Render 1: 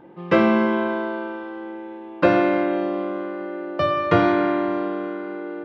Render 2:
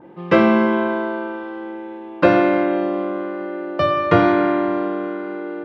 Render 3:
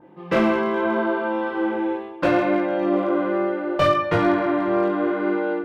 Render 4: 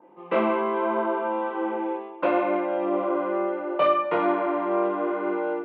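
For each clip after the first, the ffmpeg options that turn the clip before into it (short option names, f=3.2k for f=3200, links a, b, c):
-af "adynamicequalizer=threshold=0.0126:dfrequency=2700:dqfactor=0.7:tfrequency=2700:tqfactor=0.7:attack=5:release=100:ratio=0.375:range=2:mode=cutabove:tftype=highshelf,volume=3dB"
-af "dynaudnorm=f=240:g=3:m=13.5dB,asoftclip=type=hard:threshold=-7.5dB,flanger=delay=19:depth=6.5:speed=0.73,volume=-2dB"
-af "highpass=f=240:w=0.5412,highpass=f=240:w=1.3066,equalizer=f=300:t=q:w=4:g=-6,equalizer=f=980:t=q:w=4:g=4,equalizer=f=1.7k:t=q:w=4:g=-9,lowpass=f=2.8k:w=0.5412,lowpass=f=2.8k:w=1.3066,volume=-2dB"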